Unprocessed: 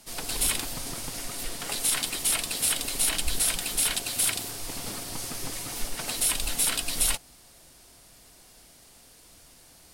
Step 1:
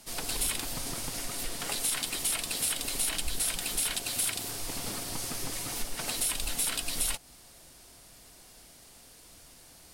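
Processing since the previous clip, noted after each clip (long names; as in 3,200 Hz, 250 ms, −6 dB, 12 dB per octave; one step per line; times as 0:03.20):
downward compressor 2 to 1, threshold −30 dBFS, peak gain reduction 6.5 dB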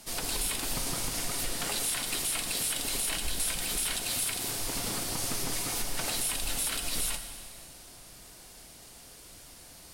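brickwall limiter −23.5 dBFS, peak gain reduction 8.5 dB
dense smooth reverb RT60 2.3 s, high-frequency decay 0.95×, DRR 6.5 dB
level +2.5 dB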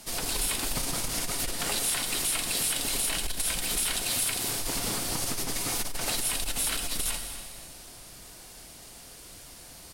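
single-tap delay 247 ms −15 dB
saturating transformer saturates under 53 Hz
level +3 dB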